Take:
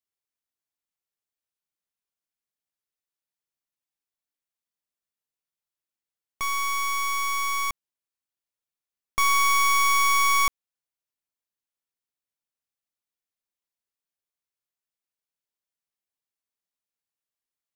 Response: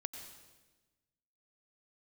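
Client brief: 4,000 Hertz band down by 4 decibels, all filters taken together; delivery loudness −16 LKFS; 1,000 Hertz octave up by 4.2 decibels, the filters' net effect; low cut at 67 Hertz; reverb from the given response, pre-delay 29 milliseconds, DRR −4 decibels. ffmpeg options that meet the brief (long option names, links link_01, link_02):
-filter_complex "[0:a]highpass=67,equalizer=frequency=1000:width_type=o:gain=5,equalizer=frequency=4000:width_type=o:gain=-6,asplit=2[link_01][link_02];[1:a]atrim=start_sample=2205,adelay=29[link_03];[link_02][link_03]afir=irnorm=-1:irlink=0,volume=5.5dB[link_04];[link_01][link_04]amix=inputs=2:normalize=0,volume=4.5dB"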